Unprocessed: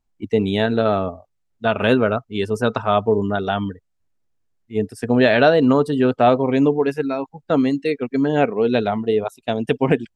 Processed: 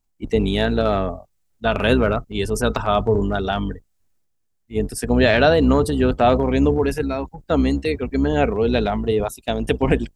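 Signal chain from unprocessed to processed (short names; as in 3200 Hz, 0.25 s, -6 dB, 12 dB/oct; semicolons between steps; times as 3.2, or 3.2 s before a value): octaver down 2 oct, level -3 dB; transient shaper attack +1 dB, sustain +6 dB; high shelf 5400 Hz +10.5 dB; gain -2 dB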